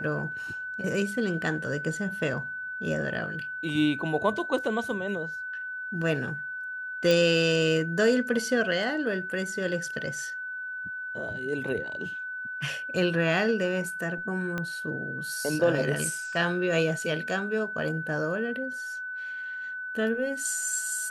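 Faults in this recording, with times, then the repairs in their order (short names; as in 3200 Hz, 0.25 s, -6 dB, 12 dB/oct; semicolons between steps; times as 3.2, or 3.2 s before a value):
tone 1500 Hz -33 dBFS
7.11 pop
14.58 pop -18 dBFS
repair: de-click; notch 1500 Hz, Q 30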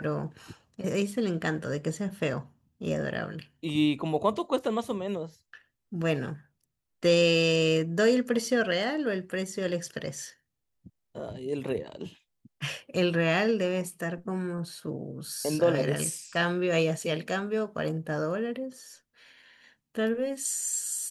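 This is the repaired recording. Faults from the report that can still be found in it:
7.11 pop
14.58 pop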